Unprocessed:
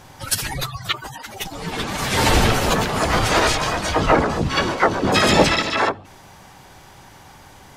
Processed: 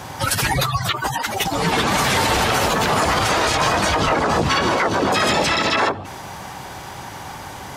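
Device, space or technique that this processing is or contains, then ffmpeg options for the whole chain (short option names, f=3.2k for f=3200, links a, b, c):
mastering chain: -filter_complex "[0:a]highpass=56,equalizer=f=940:t=o:w=1.4:g=3,acrossover=split=480|2500[a][b][c];[a]acompressor=threshold=-26dB:ratio=4[d];[b]acompressor=threshold=-20dB:ratio=4[e];[c]acompressor=threshold=-25dB:ratio=4[f];[d][e][f]amix=inputs=3:normalize=0,acompressor=threshold=-24dB:ratio=2,alimiter=level_in=18dB:limit=-1dB:release=50:level=0:latency=1,volume=-8dB"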